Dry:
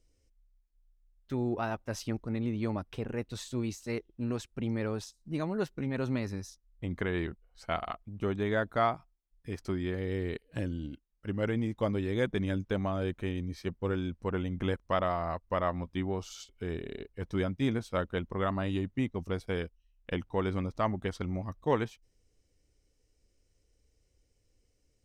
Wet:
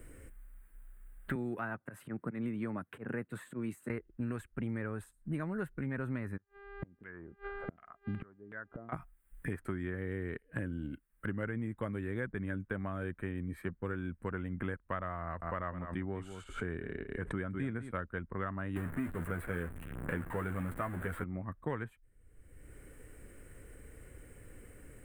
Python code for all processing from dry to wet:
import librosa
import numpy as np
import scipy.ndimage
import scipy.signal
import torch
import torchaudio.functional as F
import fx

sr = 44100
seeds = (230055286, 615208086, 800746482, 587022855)

y = fx.chain(x, sr, fx.auto_swell(attack_ms=157.0),
    fx.highpass(hz=140.0, slope=24), at=(1.35, 3.9))
y = fx.filter_lfo_lowpass(y, sr, shape='saw_down', hz=2.7, low_hz=240.0, high_hz=2900.0, q=1.7, at=(6.36, 8.92), fade=0.02)
y = fx.dmg_buzz(y, sr, base_hz=400.0, harmonics=12, level_db=-59.0, tilt_db=-7, odd_only=False, at=(6.36, 8.92), fade=0.02)
y = fx.gate_flip(y, sr, shuts_db=-33.0, range_db=-36, at=(6.36, 8.92), fade=0.02)
y = fx.chain(y, sr, fx.lowpass(hz=9500.0, slope=24),
    fx.echo_single(ms=198, db=-13.0),
    fx.pre_swell(db_per_s=96.0), at=(15.22, 17.91))
y = fx.chain(y, sr, fx.zero_step(step_db=-30.0),
    fx.doubler(ms=12.0, db=-5.5), at=(18.76, 21.24))
y = fx.curve_eq(y, sr, hz=(170.0, 840.0, 1600.0, 5700.0, 8500.0), db=(0, -5, 7, -29, -1))
y = fx.band_squash(y, sr, depth_pct=100)
y = y * librosa.db_to_amplitude(-5.5)